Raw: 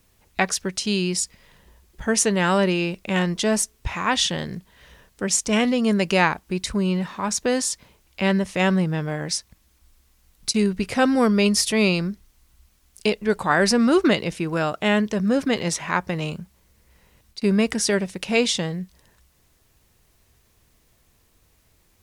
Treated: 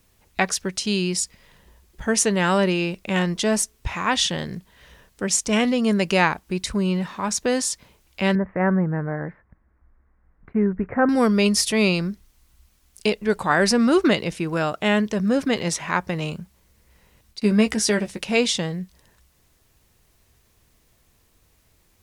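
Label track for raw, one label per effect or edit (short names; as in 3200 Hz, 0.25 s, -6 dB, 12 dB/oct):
8.350000	11.090000	steep low-pass 1900 Hz 48 dB/oct
17.400000	18.210000	doubler 14 ms -7 dB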